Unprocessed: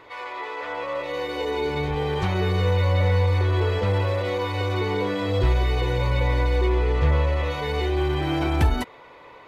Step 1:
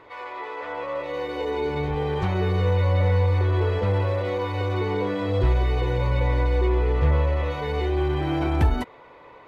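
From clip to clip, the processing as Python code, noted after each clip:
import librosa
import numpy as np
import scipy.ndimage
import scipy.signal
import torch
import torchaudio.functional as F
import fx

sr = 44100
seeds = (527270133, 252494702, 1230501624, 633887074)

y = fx.high_shelf(x, sr, hz=2500.0, db=-8.5)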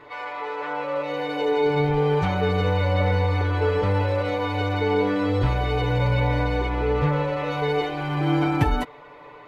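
y = x + 0.98 * np.pad(x, (int(6.8 * sr / 1000.0), 0))[:len(x)]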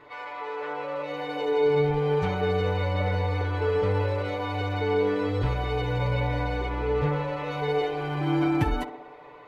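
y = fx.echo_banded(x, sr, ms=64, feedback_pct=79, hz=550.0, wet_db=-7.5)
y = y * 10.0 ** (-4.5 / 20.0)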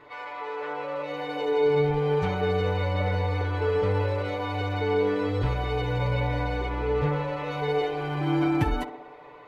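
y = x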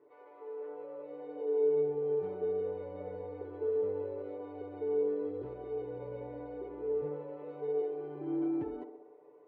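y = fx.bandpass_q(x, sr, hz=390.0, q=3.9)
y = y * 10.0 ** (-3.0 / 20.0)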